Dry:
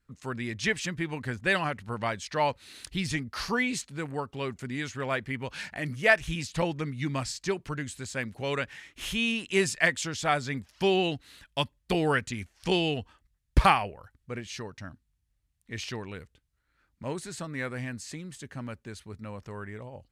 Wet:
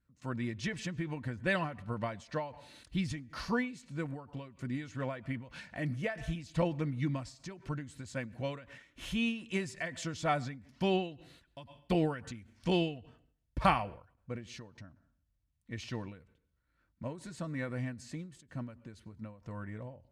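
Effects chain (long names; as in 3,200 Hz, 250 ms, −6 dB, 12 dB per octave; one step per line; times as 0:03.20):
low-pass filter 3,000 Hz 6 dB per octave
parametric band 2,000 Hz −4.5 dB 2.8 octaves
notch comb filter 410 Hz
on a send at −23.5 dB: convolution reverb RT60 0.55 s, pre-delay 88 ms
on the sum: every ending faded ahead of time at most 120 dB per second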